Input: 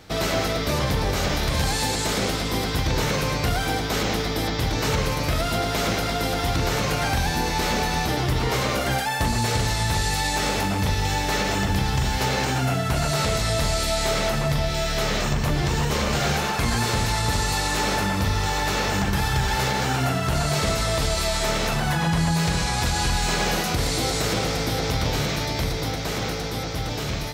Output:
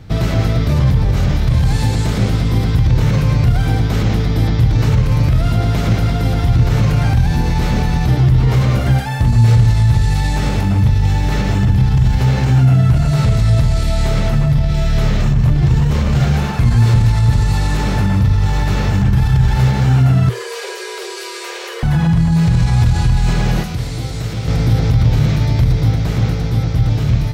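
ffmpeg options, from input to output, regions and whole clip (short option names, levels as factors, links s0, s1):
-filter_complex "[0:a]asettb=1/sr,asplit=3[s0][s1][s2];[s0]atrim=end=20.294[s3];[s1]atrim=start=20.29:end=21.83,asetpts=PTS-STARTPTS,afade=t=in:d=0.004:c=qsin,afade=t=out:st=1.536:d=0.004:c=qsin,highpass=f=140:p=1,equalizer=f=480:t=o:w=1.7:g=-10.5,afreqshift=320[s4];[s2]atrim=start=21.826[s5];[s3][s4]acrossfade=d=0.004:c1=hsin:c2=qsin[s6];[s6][s5]acrossfade=d=0.004:c1=qsin:c2=hsin,asettb=1/sr,asplit=3[s7][s8][s9];[s7]atrim=end=23.634[s10];[s8]atrim=start=23.63:end=24.48,asetpts=PTS-STARTPTS,afade=t=in:d=0.004:c=qsin,afade=t=out:st=0.846:d=0.004:c=qsin,aeval=exprs='sgn(val(0))*max(abs(val(0))-0.00422,0)':c=same,acrossover=split=120|340|2100[s11][s12][s13][s14];[s11]acompressor=threshold=0.00794:ratio=3[s15];[s12]acompressor=threshold=0.00794:ratio=3[s16];[s13]acompressor=threshold=0.0158:ratio=3[s17];[s14]acompressor=threshold=0.0282:ratio=3[s18];[s15][s16][s17][s18]amix=inputs=4:normalize=0[s19];[s9]atrim=start=24.476[s20];[s10][s19]acrossfade=d=0.004:c1=hsin:c2=qsin[s21];[s21][s20]acrossfade=d=0.004:c1=qsin:c2=hsin,bass=f=250:g=15,treble=f=4000:g=-5,alimiter=limit=0.422:level=0:latency=1:release=27,equalizer=f=120:w=5.9:g=8"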